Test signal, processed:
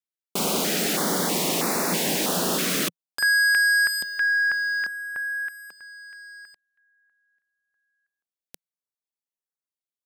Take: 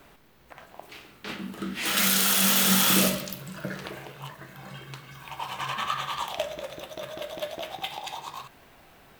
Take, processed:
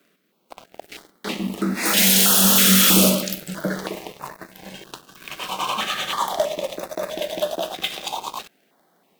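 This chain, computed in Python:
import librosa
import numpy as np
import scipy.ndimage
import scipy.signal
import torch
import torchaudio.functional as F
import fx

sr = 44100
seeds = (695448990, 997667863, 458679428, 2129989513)

y = scipy.signal.sosfilt(scipy.signal.ellip(4, 1.0, 40, 170.0, 'highpass', fs=sr, output='sos'), x)
y = fx.leveller(y, sr, passes=3)
y = fx.filter_held_notch(y, sr, hz=3.1, low_hz=870.0, high_hz=3100.0)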